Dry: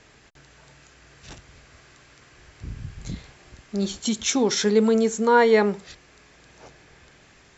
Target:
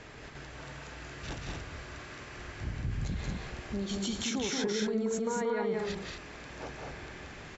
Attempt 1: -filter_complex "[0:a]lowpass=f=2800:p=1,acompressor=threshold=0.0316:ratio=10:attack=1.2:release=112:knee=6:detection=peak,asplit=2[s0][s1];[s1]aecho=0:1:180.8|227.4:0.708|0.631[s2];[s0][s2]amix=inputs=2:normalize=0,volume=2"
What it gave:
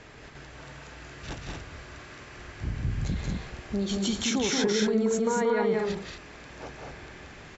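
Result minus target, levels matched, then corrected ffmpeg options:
compression: peak gain reduction -6.5 dB
-filter_complex "[0:a]lowpass=f=2800:p=1,acompressor=threshold=0.0141:ratio=10:attack=1.2:release=112:knee=6:detection=peak,asplit=2[s0][s1];[s1]aecho=0:1:180.8|227.4:0.708|0.631[s2];[s0][s2]amix=inputs=2:normalize=0,volume=2"

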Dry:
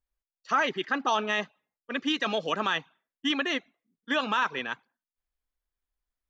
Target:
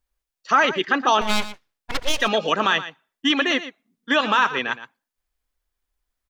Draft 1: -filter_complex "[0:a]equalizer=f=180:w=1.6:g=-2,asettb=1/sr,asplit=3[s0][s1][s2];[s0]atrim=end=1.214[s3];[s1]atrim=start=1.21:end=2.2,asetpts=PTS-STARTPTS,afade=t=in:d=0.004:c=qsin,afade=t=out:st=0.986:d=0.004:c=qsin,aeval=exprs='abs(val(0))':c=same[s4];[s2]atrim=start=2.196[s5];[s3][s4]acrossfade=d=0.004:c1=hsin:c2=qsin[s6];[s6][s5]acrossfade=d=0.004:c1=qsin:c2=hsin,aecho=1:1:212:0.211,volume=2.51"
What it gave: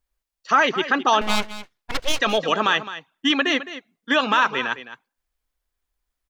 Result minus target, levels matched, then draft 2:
echo 95 ms late
-filter_complex "[0:a]equalizer=f=180:w=1.6:g=-2,asettb=1/sr,asplit=3[s0][s1][s2];[s0]atrim=end=1.214[s3];[s1]atrim=start=1.21:end=2.2,asetpts=PTS-STARTPTS,afade=t=in:d=0.004:c=qsin,afade=t=out:st=0.986:d=0.004:c=qsin,aeval=exprs='abs(val(0))':c=same[s4];[s2]atrim=start=2.196[s5];[s3][s4]acrossfade=d=0.004:c1=hsin:c2=qsin[s6];[s6][s5]acrossfade=d=0.004:c1=qsin:c2=hsin,aecho=1:1:117:0.211,volume=2.51"

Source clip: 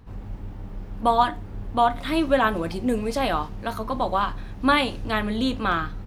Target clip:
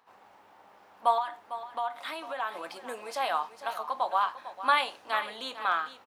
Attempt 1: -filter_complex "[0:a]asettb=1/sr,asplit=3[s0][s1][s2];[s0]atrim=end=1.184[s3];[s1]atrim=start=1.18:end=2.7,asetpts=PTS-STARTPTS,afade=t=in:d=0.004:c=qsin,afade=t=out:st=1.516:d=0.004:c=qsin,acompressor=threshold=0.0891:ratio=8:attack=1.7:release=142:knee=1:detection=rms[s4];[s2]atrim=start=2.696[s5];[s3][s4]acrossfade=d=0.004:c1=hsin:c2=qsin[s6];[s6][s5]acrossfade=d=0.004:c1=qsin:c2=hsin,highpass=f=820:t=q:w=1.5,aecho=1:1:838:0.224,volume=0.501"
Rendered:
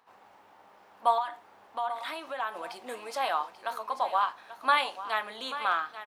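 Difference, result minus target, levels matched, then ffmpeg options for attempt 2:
echo 387 ms late
-filter_complex "[0:a]asettb=1/sr,asplit=3[s0][s1][s2];[s0]atrim=end=1.184[s3];[s1]atrim=start=1.18:end=2.7,asetpts=PTS-STARTPTS,afade=t=in:d=0.004:c=qsin,afade=t=out:st=1.516:d=0.004:c=qsin,acompressor=threshold=0.0891:ratio=8:attack=1.7:release=142:knee=1:detection=rms[s4];[s2]atrim=start=2.696[s5];[s3][s4]acrossfade=d=0.004:c1=hsin:c2=qsin[s6];[s6][s5]acrossfade=d=0.004:c1=qsin:c2=hsin,highpass=f=820:t=q:w=1.5,aecho=1:1:451:0.224,volume=0.501"

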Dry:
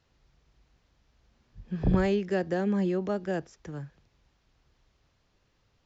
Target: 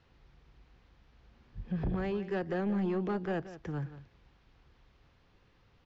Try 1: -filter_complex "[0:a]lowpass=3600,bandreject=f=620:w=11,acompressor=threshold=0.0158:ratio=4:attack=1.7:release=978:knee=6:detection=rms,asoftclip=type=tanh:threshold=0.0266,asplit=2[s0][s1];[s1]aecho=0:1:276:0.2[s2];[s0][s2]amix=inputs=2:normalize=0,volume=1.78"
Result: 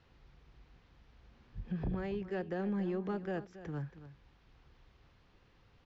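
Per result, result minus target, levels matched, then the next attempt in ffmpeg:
echo 101 ms late; compression: peak gain reduction +5.5 dB
-filter_complex "[0:a]lowpass=3600,bandreject=f=620:w=11,acompressor=threshold=0.0158:ratio=4:attack=1.7:release=978:knee=6:detection=rms,asoftclip=type=tanh:threshold=0.0266,asplit=2[s0][s1];[s1]aecho=0:1:175:0.2[s2];[s0][s2]amix=inputs=2:normalize=0,volume=1.78"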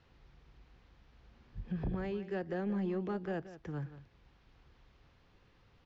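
compression: peak gain reduction +5.5 dB
-filter_complex "[0:a]lowpass=3600,bandreject=f=620:w=11,acompressor=threshold=0.0355:ratio=4:attack=1.7:release=978:knee=6:detection=rms,asoftclip=type=tanh:threshold=0.0266,asplit=2[s0][s1];[s1]aecho=0:1:175:0.2[s2];[s0][s2]amix=inputs=2:normalize=0,volume=1.78"

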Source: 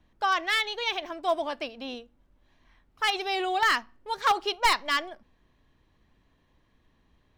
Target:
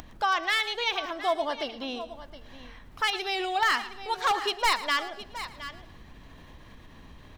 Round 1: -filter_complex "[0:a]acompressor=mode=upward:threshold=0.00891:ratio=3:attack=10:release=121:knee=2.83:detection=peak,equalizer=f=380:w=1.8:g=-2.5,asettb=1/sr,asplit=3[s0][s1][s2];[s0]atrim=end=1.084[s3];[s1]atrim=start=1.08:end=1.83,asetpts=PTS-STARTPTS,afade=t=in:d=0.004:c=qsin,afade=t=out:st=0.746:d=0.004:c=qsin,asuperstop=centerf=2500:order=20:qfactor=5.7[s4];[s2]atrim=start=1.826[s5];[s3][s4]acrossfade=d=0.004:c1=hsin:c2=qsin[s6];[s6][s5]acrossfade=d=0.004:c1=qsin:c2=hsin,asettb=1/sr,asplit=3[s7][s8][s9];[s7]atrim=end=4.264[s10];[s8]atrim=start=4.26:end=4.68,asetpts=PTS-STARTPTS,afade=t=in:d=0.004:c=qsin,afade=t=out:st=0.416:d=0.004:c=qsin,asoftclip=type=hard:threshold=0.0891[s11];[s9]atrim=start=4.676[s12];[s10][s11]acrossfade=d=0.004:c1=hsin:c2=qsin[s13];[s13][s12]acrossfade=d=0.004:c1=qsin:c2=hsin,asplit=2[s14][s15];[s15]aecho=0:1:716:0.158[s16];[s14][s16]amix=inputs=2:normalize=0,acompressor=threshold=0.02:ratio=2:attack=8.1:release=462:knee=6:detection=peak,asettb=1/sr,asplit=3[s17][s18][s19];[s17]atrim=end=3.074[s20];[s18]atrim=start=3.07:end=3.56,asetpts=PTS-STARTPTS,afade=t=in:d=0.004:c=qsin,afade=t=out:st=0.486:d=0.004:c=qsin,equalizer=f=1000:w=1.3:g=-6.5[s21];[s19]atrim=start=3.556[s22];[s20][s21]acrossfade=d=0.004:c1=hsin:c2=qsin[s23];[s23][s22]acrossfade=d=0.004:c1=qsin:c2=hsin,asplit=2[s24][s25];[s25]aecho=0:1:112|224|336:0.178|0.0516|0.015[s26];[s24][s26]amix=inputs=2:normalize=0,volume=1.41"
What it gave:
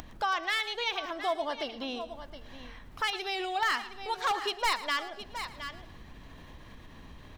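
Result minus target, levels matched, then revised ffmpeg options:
compression: peak gain reduction +4 dB
-filter_complex "[0:a]acompressor=mode=upward:threshold=0.00891:ratio=3:attack=10:release=121:knee=2.83:detection=peak,equalizer=f=380:w=1.8:g=-2.5,asettb=1/sr,asplit=3[s0][s1][s2];[s0]atrim=end=1.084[s3];[s1]atrim=start=1.08:end=1.83,asetpts=PTS-STARTPTS,afade=t=in:d=0.004:c=qsin,afade=t=out:st=0.746:d=0.004:c=qsin,asuperstop=centerf=2500:order=20:qfactor=5.7[s4];[s2]atrim=start=1.826[s5];[s3][s4]acrossfade=d=0.004:c1=hsin:c2=qsin[s6];[s6][s5]acrossfade=d=0.004:c1=qsin:c2=hsin,asettb=1/sr,asplit=3[s7][s8][s9];[s7]atrim=end=4.264[s10];[s8]atrim=start=4.26:end=4.68,asetpts=PTS-STARTPTS,afade=t=in:d=0.004:c=qsin,afade=t=out:st=0.416:d=0.004:c=qsin,asoftclip=type=hard:threshold=0.0891[s11];[s9]atrim=start=4.676[s12];[s10][s11]acrossfade=d=0.004:c1=hsin:c2=qsin[s13];[s13][s12]acrossfade=d=0.004:c1=qsin:c2=hsin,asplit=2[s14][s15];[s15]aecho=0:1:716:0.158[s16];[s14][s16]amix=inputs=2:normalize=0,acompressor=threshold=0.0531:ratio=2:attack=8.1:release=462:knee=6:detection=peak,asettb=1/sr,asplit=3[s17][s18][s19];[s17]atrim=end=3.074[s20];[s18]atrim=start=3.07:end=3.56,asetpts=PTS-STARTPTS,afade=t=in:d=0.004:c=qsin,afade=t=out:st=0.486:d=0.004:c=qsin,equalizer=f=1000:w=1.3:g=-6.5[s21];[s19]atrim=start=3.556[s22];[s20][s21]acrossfade=d=0.004:c1=hsin:c2=qsin[s23];[s23][s22]acrossfade=d=0.004:c1=qsin:c2=hsin,asplit=2[s24][s25];[s25]aecho=0:1:112|224|336:0.178|0.0516|0.015[s26];[s24][s26]amix=inputs=2:normalize=0,volume=1.41"

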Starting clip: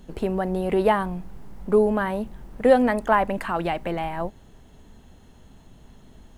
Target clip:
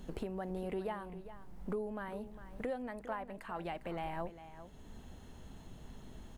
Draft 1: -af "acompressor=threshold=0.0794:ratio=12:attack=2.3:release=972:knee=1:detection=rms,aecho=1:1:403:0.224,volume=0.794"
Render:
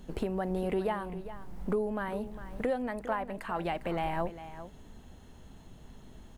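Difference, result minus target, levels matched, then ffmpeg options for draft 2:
compression: peak gain reduction -8 dB
-af "acompressor=threshold=0.0299:ratio=12:attack=2.3:release=972:knee=1:detection=rms,aecho=1:1:403:0.224,volume=0.794"

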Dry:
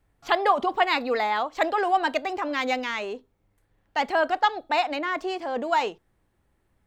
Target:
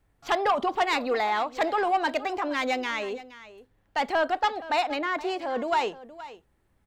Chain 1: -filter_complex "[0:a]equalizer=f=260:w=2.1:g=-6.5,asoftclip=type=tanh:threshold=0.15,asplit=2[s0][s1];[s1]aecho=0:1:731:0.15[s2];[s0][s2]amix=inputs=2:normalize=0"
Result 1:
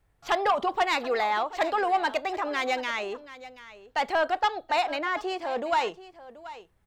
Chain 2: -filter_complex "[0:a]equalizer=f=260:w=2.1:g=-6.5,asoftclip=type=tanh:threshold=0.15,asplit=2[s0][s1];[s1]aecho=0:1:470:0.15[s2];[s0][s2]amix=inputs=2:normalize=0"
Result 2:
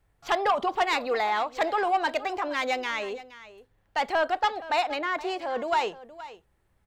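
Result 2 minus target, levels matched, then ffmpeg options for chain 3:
250 Hz band -3.5 dB
-filter_complex "[0:a]asoftclip=type=tanh:threshold=0.15,asplit=2[s0][s1];[s1]aecho=0:1:470:0.15[s2];[s0][s2]amix=inputs=2:normalize=0"

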